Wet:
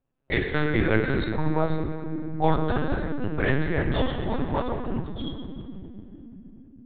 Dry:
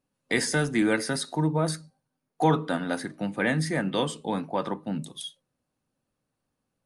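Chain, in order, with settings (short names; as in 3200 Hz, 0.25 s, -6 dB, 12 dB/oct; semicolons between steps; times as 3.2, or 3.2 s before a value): on a send at -1.5 dB: reverb RT60 3.4 s, pre-delay 8 ms; on the sum: LPC vocoder at 8 kHz pitch kept; mismatched tape noise reduction decoder only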